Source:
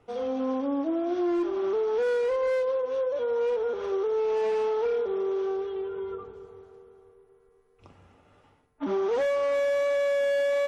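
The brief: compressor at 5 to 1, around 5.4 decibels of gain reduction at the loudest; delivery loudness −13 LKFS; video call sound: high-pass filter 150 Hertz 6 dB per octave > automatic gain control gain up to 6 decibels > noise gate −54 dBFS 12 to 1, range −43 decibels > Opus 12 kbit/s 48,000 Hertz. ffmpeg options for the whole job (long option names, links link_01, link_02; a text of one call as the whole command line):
ffmpeg -i in.wav -af "acompressor=threshold=-30dB:ratio=5,highpass=frequency=150:poles=1,dynaudnorm=maxgain=6dB,agate=range=-43dB:threshold=-54dB:ratio=12,volume=20dB" -ar 48000 -c:a libopus -b:a 12k out.opus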